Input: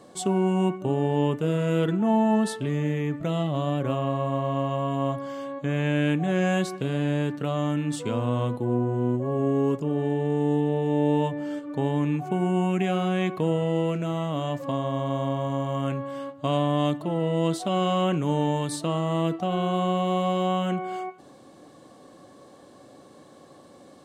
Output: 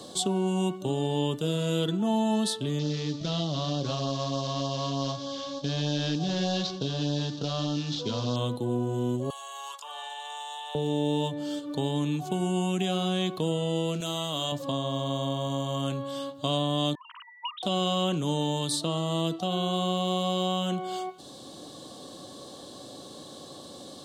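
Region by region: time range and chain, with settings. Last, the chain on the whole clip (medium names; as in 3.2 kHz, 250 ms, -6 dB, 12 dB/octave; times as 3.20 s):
2.79–8.36 s: CVSD coder 32 kbps + LFO notch sine 3.3 Hz 290–2300 Hz + delay 165 ms -17.5 dB
9.30–10.75 s: steep high-pass 850 Hz + three bands compressed up and down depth 100%
14.00–14.52 s: tilt EQ +2.5 dB/octave + de-hum 281.4 Hz, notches 32
16.95–17.63 s: formants replaced by sine waves + brick-wall FIR high-pass 920 Hz
whole clip: resonant high shelf 2.8 kHz +8.5 dB, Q 3; three bands compressed up and down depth 40%; trim -3.5 dB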